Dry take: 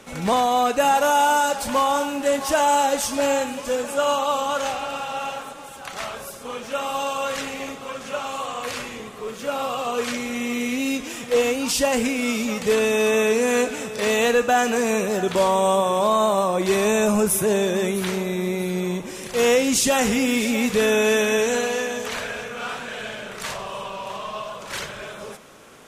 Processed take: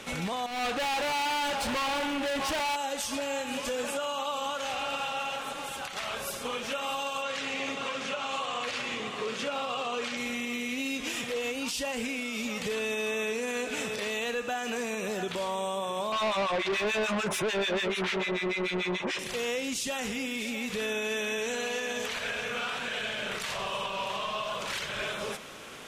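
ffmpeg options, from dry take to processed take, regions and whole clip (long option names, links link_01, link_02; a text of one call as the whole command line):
ffmpeg -i in.wav -filter_complex "[0:a]asettb=1/sr,asplit=3[link_01][link_02][link_03];[link_01]atrim=end=0.464[link_04];[link_02]atrim=start=0.46:end=2.76,asetpts=PTS-STARTPTS,afade=type=in:duration=0.004:curve=qsin,afade=type=out:start_time=2.296:duration=0.004:curve=qsin,aemphasis=mode=reproduction:type=cd,volume=29.5dB,asoftclip=hard,volume=-29.5dB[link_05];[link_03]atrim=start=2.756[link_06];[link_04][link_05]acrossfade=duration=0.004:curve1=hsin:curve2=qsin[link_07];[link_07][link_06]acrossfade=duration=0.004:curve1=qsin:curve2=hsin,asettb=1/sr,asplit=3[link_08][link_09][link_10];[link_08]atrim=end=7.224[link_11];[link_09]atrim=start=7.22:end=10.17,asetpts=PTS-STARTPTS,afade=type=in:duration=0.004:curve=qsin,afade=type=out:start_time=2.946:duration=0.004:curve=qsin,highpass=100,lowpass=7200,aecho=1:1:549:0.211,atrim=end_sample=130095[link_12];[link_10]atrim=start=10.166[link_13];[link_11][link_12]acrossfade=duration=0.004:curve1=hsin:curve2=qsin[link_14];[link_14][link_13]acrossfade=duration=0.004:curve1=qsin:curve2=hsin,asettb=1/sr,asplit=3[link_15][link_16][link_17];[link_15]atrim=end=16.124[link_18];[link_16]atrim=start=16.12:end=19.19,asetpts=PTS-STARTPTS,afade=type=in:duration=0.004:curve=qsin,afade=type=out:start_time=3.066:duration=0.004:curve=qsin,acrossover=split=1300[link_19][link_20];[link_19]aeval=exprs='val(0)*(1-1/2+1/2*cos(2*PI*6.8*n/s))':channel_layout=same[link_21];[link_20]aeval=exprs='val(0)*(1-1/2-1/2*cos(2*PI*6.8*n/s))':channel_layout=same[link_22];[link_21][link_22]amix=inputs=2:normalize=0,adynamicsmooth=sensitivity=1.5:basefreq=4800,asplit=2[link_23][link_24];[link_24]highpass=frequency=720:poles=1,volume=24dB,asoftclip=type=tanh:threshold=-11.5dB[link_25];[link_23][link_25]amix=inputs=2:normalize=0,lowpass=frequency=4700:poles=1,volume=-6dB[link_26];[link_17]atrim=start=19.186[link_27];[link_18][link_26]acrossfade=duration=0.004:curve1=hsin:curve2=qsin[link_28];[link_28][link_27]acrossfade=duration=0.004:curve1=qsin:curve2=hsin,equalizer=frequency=3000:width=0.83:gain=7,acompressor=threshold=-23dB:ratio=5,alimiter=limit=-23.5dB:level=0:latency=1:release=201" out.wav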